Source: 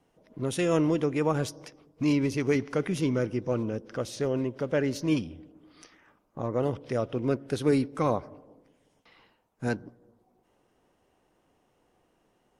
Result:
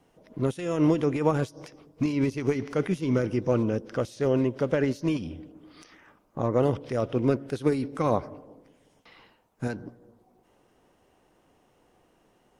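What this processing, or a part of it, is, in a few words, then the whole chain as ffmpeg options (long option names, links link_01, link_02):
de-esser from a sidechain: -filter_complex "[0:a]asplit=2[link_01][link_02];[link_02]highpass=6100,apad=whole_len=555522[link_03];[link_01][link_03]sidechaincompress=threshold=-54dB:ratio=5:attack=1.4:release=73,volume=5dB"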